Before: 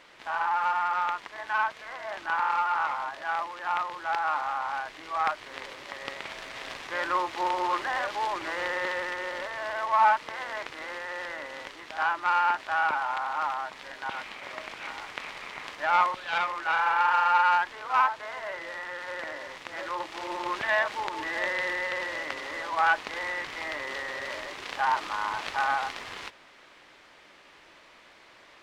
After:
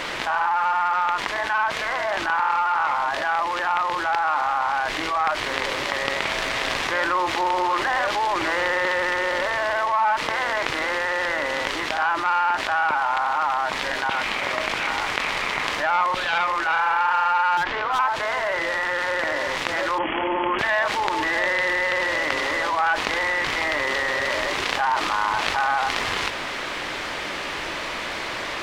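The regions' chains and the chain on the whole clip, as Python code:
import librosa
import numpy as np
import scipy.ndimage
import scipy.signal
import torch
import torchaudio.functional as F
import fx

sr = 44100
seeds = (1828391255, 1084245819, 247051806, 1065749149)

y = fx.chain(x, sr, fx.lowpass(hz=3500.0, slope=12),
    fx.clip_hard(threshold_db=-25.0), at=(17.57, 17.99))
y = fx.chain(y, sr, fx.cheby1_lowpass(hz=3300.0, order=10),
    fx.peak_eq(hz=250.0, db=8.5, octaves=0.67), at=(19.98, 20.59))
y = fx.low_shelf(y, sr, hz=130.0, db=4.0)
y = fx.env_flatten(y, sr, amount_pct=70)
y = F.gain(torch.from_numpy(y), -1.0).numpy()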